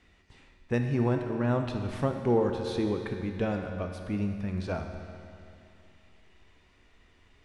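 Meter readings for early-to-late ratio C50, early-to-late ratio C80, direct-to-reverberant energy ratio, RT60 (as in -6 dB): 5.0 dB, 6.0 dB, 4.0 dB, 2.6 s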